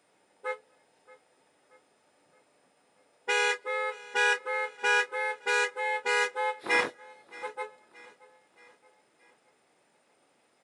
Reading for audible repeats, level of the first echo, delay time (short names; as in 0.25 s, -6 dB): 3, -21.0 dB, 0.625 s